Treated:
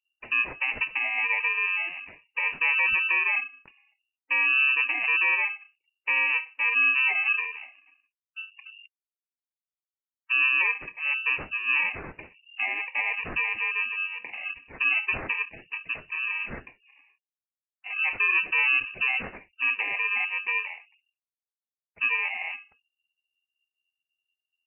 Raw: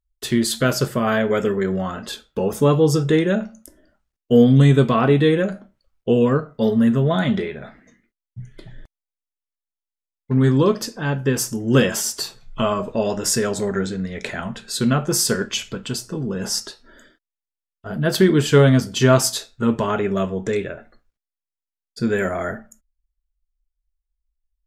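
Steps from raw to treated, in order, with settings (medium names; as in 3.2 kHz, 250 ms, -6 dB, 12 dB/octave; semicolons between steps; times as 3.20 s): bit-reversed sample order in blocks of 32 samples; spectral gate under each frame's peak -25 dB strong; high-pass 41 Hz; peak limiter -10.5 dBFS, peak gain reduction 9 dB; frequency inversion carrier 2.8 kHz; trim -4.5 dB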